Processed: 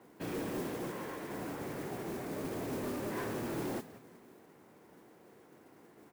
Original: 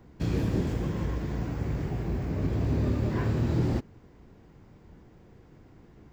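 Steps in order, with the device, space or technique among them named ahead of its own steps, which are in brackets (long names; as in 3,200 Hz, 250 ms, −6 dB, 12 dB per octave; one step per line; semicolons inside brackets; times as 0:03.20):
0:00.90–0:01.30: low-shelf EQ 320 Hz −7 dB
echo with shifted repeats 182 ms, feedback 42%, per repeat −120 Hz, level −16.5 dB
carbon microphone (band-pass filter 330–2,700 Hz; soft clipping −34 dBFS, distortion −12 dB; noise that follows the level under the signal 14 dB)
level +1 dB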